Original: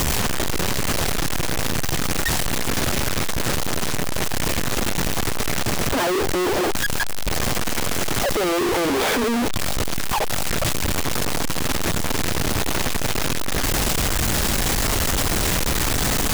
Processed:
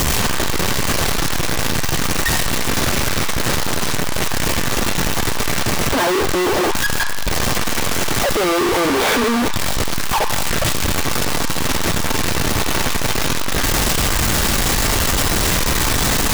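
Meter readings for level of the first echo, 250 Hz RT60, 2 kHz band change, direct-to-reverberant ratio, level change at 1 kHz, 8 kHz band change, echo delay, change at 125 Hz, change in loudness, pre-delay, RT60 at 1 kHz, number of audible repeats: no echo, 2.3 s, +5.0 dB, 5.5 dB, +5.0 dB, +4.0 dB, no echo, +3.5 dB, +4.0 dB, 3 ms, 1.3 s, no echo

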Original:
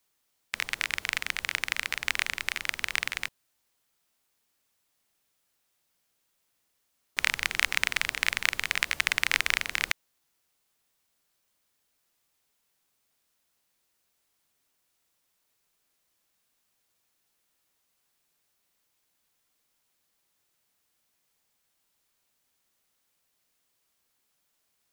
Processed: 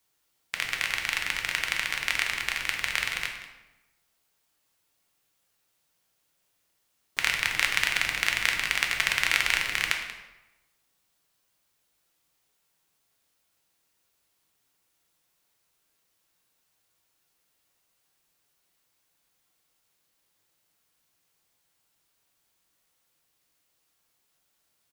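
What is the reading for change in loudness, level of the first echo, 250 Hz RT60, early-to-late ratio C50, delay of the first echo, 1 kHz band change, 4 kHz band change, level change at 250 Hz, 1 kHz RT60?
+2.0 dB, -15.0 dB, 1.1 s, 5.5 dB, 185 ms, +2.5 dB, +2.0 dB, +2.5 dB, 1.0 s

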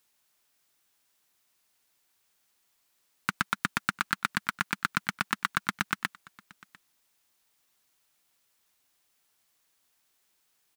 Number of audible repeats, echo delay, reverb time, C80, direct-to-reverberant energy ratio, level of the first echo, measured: 1, 699 ms, no reverb, no reverb, no reverb, -24.0 dB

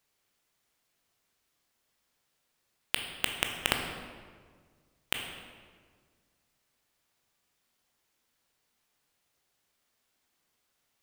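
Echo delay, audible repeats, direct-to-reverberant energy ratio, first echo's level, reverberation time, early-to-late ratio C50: no echo, no echo, 3.0 dB, no echo, 1.7 s, 5.0 dB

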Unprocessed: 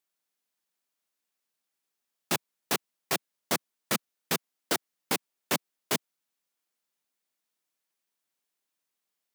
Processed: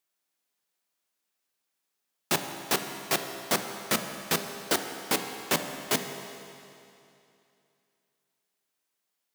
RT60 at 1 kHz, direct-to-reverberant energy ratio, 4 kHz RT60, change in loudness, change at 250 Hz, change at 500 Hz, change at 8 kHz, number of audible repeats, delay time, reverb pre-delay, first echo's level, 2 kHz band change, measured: 2.7 s, 5.5 dB, 2.6 s, +2.5 dB, +2.5 dB, +3.5 dB, +2.5 dB, no echo, no echo, 15 ms, no echo, +3.0 dB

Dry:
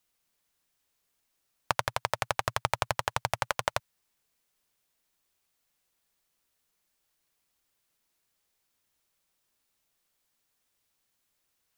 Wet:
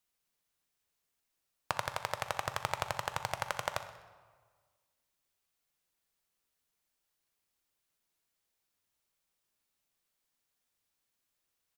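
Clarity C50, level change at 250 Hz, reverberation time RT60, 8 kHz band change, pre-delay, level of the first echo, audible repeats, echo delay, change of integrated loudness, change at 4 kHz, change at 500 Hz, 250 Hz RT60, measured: 10.0 dB, -5.0 dB, 1.5 s, -5.5 dB, 10 ms, -16.0 dB, 2, 63 ms, -5.5 dB, -5.5 dB, -5.5 dB, 1.6 s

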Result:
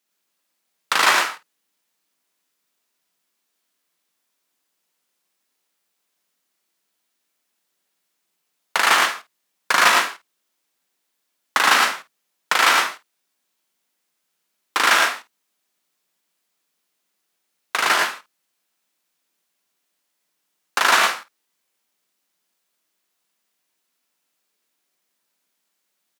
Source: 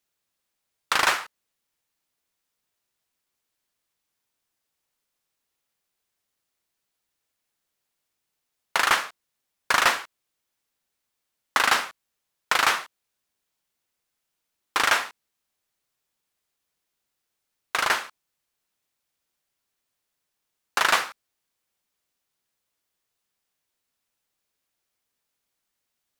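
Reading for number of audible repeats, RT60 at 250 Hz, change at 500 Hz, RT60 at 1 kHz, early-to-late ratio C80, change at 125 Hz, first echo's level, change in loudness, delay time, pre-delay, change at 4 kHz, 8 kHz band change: 3, no reverb, +5.5 dB, no reverb, no reverb, no reading, -8.0 dB, +5.5 dB, 58 ms, no reverb, +6.0 dB, +6.0 dB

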